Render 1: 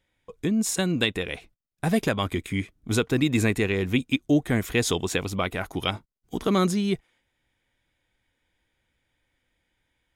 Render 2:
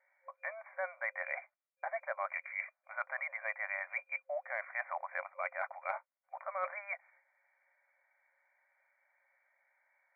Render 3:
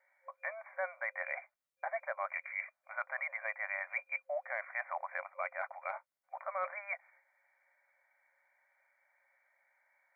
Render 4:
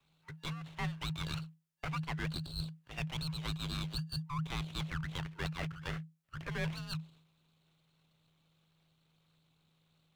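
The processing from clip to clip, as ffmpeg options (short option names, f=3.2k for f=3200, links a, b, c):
-af "afftfilt=real='re*between(b*sr/4096,530,2400)':imag='im*between(b*sr/4096,530,2400)':win_size=4096:overlap=0.75,areverse,acompressor=threshold=-39dB:ratio=6,areverse,volume=4dB"
-af "alimiter=level_in=2dB:limit=-24dB:level=0:latency=1:release=236,volume=-2dB,volume=1dB"
-af "aeval=exprs='abs(val(0))':c=same,afreqshift=-160,volume=1.5dB"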